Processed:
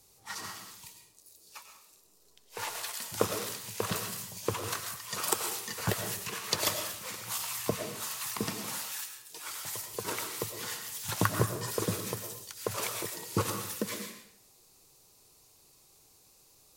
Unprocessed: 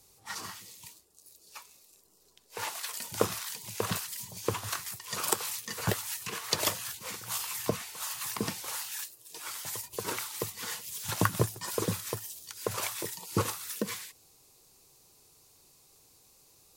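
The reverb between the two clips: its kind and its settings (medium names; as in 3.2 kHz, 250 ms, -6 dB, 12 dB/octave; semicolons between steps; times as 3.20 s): algorithmic reverb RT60 0.71 s, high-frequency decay 0.75×, pre-delay 70 ms, DRR 5.5 dB; trim -1 dB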